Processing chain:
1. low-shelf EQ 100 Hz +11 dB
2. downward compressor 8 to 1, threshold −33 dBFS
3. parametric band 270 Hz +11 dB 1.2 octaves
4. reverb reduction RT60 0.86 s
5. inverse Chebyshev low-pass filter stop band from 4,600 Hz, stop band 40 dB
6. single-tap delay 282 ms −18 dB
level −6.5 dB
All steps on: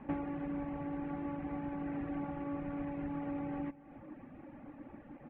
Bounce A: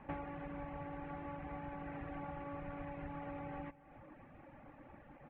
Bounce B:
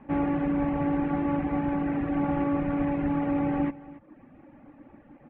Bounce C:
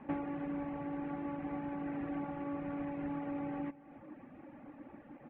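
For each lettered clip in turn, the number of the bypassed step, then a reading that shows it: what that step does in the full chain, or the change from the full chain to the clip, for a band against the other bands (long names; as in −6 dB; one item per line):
3, 250 Hz band −8.0 dB
2, change in crest factor −3.0 dB
1, 125 Hz band −3.5 dB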